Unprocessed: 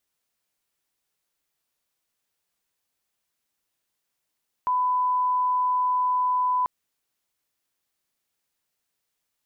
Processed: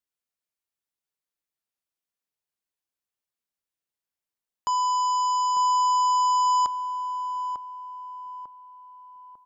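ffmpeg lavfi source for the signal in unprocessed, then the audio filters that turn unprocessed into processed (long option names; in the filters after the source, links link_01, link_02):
-f lavfi -i "sine=frequency=1000:duration=1.99:sample_rate=44100,volume=-1.94dB"
-filter_complex "[0:a]aeval=exprs='0.106*(cos(1*acos(clip(val(0)/0.106,-1,1)))-cos(1*PI/2))+0.0188*(cos(7*acos(clip(val(0)/0.106,-1,1)))-cos(7*PI/2))':channel_layout=same,asplit=2[link_01][link_02];[link_02]adelay=898,lowpass=frequency=1100:poles=1,volume=-6dB,asplit=2[link_03][link_04];[link_04]adelay=898,lowpass=frequency=1100:poles=1,volume=0.5,asplit=2[link_05][link_06];[link_06]adelay=898,lowpass=frequency=1100:poles=1,volume=0.5,asplit=2[link_07][link_08];[link_08]adelay=898,lowpass=frequency=1100:poles=1,volume=0.5,asplit=2[link_09][link_10];[link_10]adelay=898,lowpass=frequency=1100:poles=1,volume=0.5,asplit=2[link_11][link_12];[link_12]adelay=898,lowpass=frequency=1100:poles=1,volume=0.5[link_13];[link_03][link_05][link_07][link_09][link_11][link_13]amix=inputs=6:normalize=0[link_14];[link_01][link_14]amix=inputs=2:normalize=0"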